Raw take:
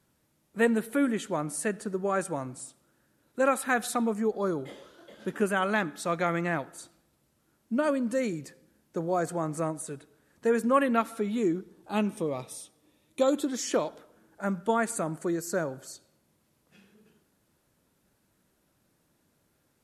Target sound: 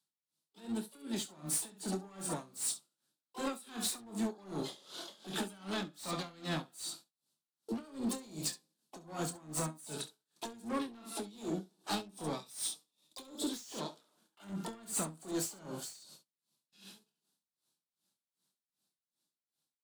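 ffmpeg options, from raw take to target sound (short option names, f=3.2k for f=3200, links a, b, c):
-filter_complex "[0:a]acrossover=split=360[a][b];[b]acompressor=threshold=-37dB:ratio=8[c];[a][c]amix=inputs=2:normalize=0,asplit=3[d][e][f];[e]asetrate=66075,aresample=44100,atempo=0.66742,volume=-12dB[g];[f]asetrate=88200,aresample=44100,atempo=0.5,volume=-13dB[h];[d][g][h]amix=inputs=3:normalize=0,alimiter=level_in=3dB:limit=-24dB:level=0:latency=1:release=429,volume=-3dB,equalizer=f=250:t=o:w=1:g=-6,equalizer=f=500:t=o:w=1:g=-9,equalizer=f=2k:t=o:w=1:g=-10,equalizer=f=4k:t=o:w=1:g=12,equalizer=f=8k:t=o:w=1:g=9,dynaudnorm=f=220:g=13:m=4dB,highpass=f=170:w=0.5412,highpass=f=170:w=1.3066,asoftclip=type=tanh:threshold=-31.5dB,equalizer=f=6.8k:w=2:g=-4,agate=range=-23dB:threshold=-58dB:ratio=16:detection=peak,asplit=2[i][j];[j]aecho=0:1:26|68:0.447|0.398[k];[i][k]amix=inputs=2:normalize=0,asoftclip=type=hard:threshold=-35.5dB,aeval=exprs='val(0)*pow(10,-22*(0.5-0.5*cos(2*PI*2.6*n/s))/20)':c=same,volume=6.5dB"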